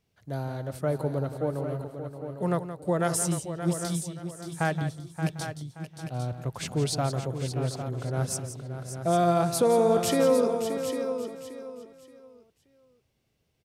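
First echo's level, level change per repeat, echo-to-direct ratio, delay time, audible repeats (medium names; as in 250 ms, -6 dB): -11.0 dB, no regular repeats, -5.0 dB, 172 ms, 9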